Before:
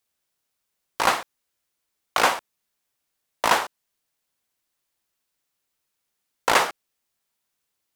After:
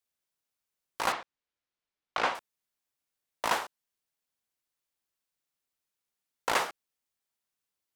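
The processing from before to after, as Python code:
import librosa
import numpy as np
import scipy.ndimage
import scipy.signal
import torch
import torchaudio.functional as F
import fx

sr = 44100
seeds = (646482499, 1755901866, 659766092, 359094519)

y = fx.lowpass(x, sr, hz=4200.0, slope=12, at=(1.12, 2.35))
y = y * librosa.db_to_amplitude(-9.0)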